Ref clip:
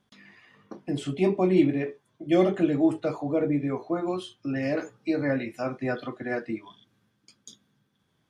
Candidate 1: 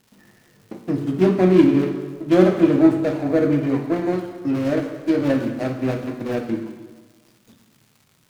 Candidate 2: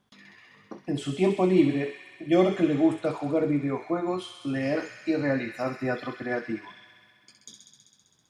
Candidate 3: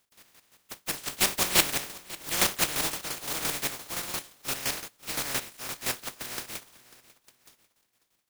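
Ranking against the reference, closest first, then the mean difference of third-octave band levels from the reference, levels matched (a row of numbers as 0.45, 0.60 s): 2, 1, 3; 3.0, 5.5, 16.5 dB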